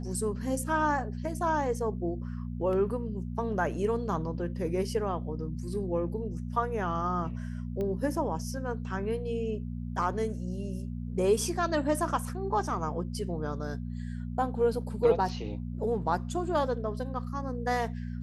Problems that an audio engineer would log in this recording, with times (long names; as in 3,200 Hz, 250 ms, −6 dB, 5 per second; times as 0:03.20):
mains hum 60 Hz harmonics 4 −36 dBFS
0:07.81: click −24 dBFS